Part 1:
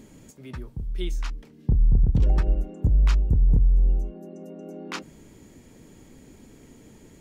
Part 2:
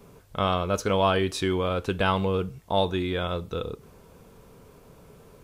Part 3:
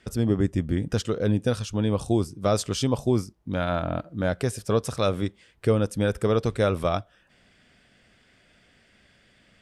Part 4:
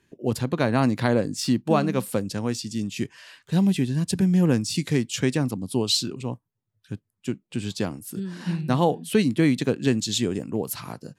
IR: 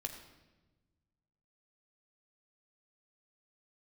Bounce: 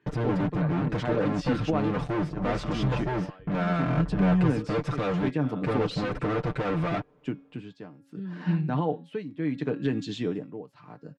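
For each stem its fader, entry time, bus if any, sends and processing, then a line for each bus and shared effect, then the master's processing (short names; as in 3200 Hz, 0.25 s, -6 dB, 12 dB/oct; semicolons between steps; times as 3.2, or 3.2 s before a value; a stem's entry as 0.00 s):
-19.0 dB, 0.55 s, bus A, no send, dry
-10.0 dB, 2.25 s, bus A, no send, Chebyshev high-pass 260 Hz; compressor, threshold -26 dBFS, peak gain reduction 8.5 dB
-13.0 dB, 0.00 s, no bus, no send, comb 5.9 ms, depth 82%; fuzz box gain 37 dB, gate -40 dBFS
+0.5 dB, 0.00 s, bus A, no send, HPF 140 Hz; de-hum 276.3 Hz, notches 23; de-esser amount 45%
bus A: 0.0 dB, tremolo 0.7 Hz, depth 85%; limiter -18 dBFS, peak gain reduction 8 dB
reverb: off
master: LPF 2100 Hz 12 dB/oct; comb 6.7 ms, depth 54%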